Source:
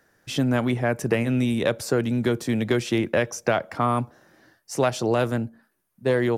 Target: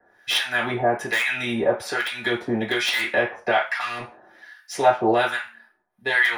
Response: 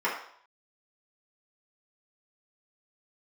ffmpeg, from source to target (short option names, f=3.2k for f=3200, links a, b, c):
-filter_complex "[0:a]equalizer=f=160:t=o:w=0.33:g=-7,equalizer=f=315:t=o:w=0.33:g=-5,equalizer=f=500:t=o:w=0.33:g=-7,asplit=2[a][b];[b]alimiter=limit=-17dB:level=0:latency=1:release=100,volume=1.5dB[c];[a][c]amix=inputs=2:normalize=0,asettb=1/sr,asplit=3[d][e][f];[d]atrim=end=3.804[g];[e]atrim=start=3.8:end=4.74,asetpts=PTS-STARTPTS,afade=t=in:d=0.004:c=qsin,afade=t=out:st=0.936:d=0.004:c=qsin,volume=25.5dB,asoftclip=hard,volume=-25.5dB[h];[f]atrim=start=4.736[i];[g][h]acrossfade=d=0.004:c1=hsin:c2=qsin[j];[j][i]acrossfade=d=0.004:c1=qsin:c2=hsin,acrossover=split=1100[k][l];[k]aeval=exprs='val(0)*(1-1/2+1/2*cos(2*PI*1.2*n/s))':c=same[m];[l]aeval=exprs='val(0)*(1-1/2-1/2*cos(2*PI*1.2*n/s))':c=same[n];[m][n]amix=inputs=2:normalize=0,acrossover=split=540|1300[o][p][q];[q]aeval=exprs='(mod(8.91*val(0)+1,2)-1)/8.91':c=same[r];[o][p][r]amix=inputs=3:normalize=0[s];[1:a]atrim=start_sample=2205,asetrate=79380,aresample=44100[t];[s][t]afir=irnorm=-1:irlink=0"